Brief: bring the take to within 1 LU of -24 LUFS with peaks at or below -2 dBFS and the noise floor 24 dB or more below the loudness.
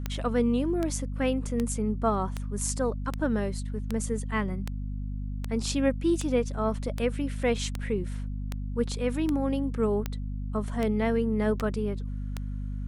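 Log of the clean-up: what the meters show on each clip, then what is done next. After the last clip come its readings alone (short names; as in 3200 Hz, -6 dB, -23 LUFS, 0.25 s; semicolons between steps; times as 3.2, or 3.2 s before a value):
clicks 17; hum 50 Hz; harmonics up to 250 Hz; hum level -30 dBFS; loudness -29.5 LUFS; peak -13.5 dBFS; loudness target -24.0 LUFS
-> de-click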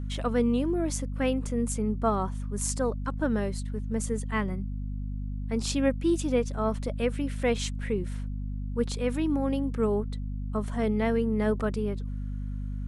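clicks 0; hum 50 Hz; harmonics up to 250 Hz; hum level -30 dBFS
-> de-hum 50 Hz, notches 5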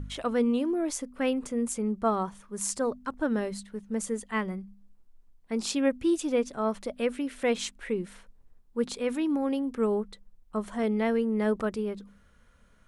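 hum none; loudness -30.0 LUFS; peak -13.5 dBFS; loudness target -24.0 LUFS
-> gain +6 dB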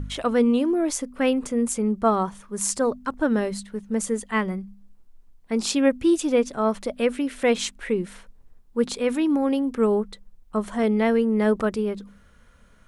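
loudness -24.0 LUFS; peak -7.5 dBFS; noise floor -54 dBFS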